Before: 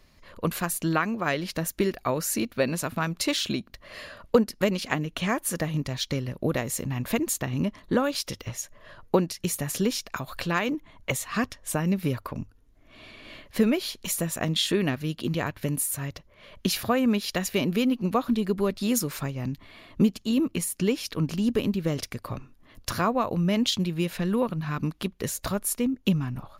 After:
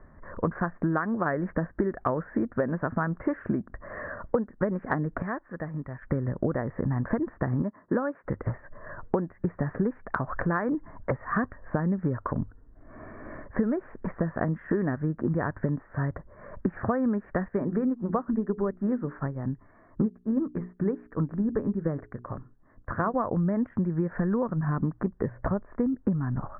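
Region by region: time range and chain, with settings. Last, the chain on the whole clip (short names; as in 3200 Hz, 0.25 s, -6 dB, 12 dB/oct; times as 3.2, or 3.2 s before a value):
5.22–6.02 pre-emphasis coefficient 0.8 + mismatched tape noise reduction encoder only
7.62–8.24 BPF 170–5100 Hz + upward expander, over -37 dBFS
17.48–23.14 notches 60/120/180/240/300/360/420 Hz + upward expander, over -40 dBFS
24.61–25.78 notches 60/120 Hz + dynamic EQ 1500 Hz, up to -7 dB, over -48 dBFS, Q 1.7
whole clip: steep low-pass 1800 Hz 72 dB/oct; compressor 6:1, threshold -31 dBFS; gain +7.5 dB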